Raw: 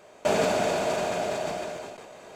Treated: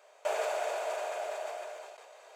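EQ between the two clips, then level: inverse Chebyshev high-pass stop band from 250 Hz, stop band 40 dB; dynamic bell 4.6 kHz, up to -6 dB, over -50 dBFS, Q 1.1; -6.5 dB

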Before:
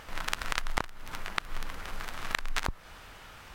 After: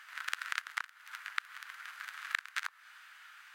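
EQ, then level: ladder high-pass 1.3 kHz, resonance 50%; band-stop 5.5 kHz, Q 26; +2.0 dB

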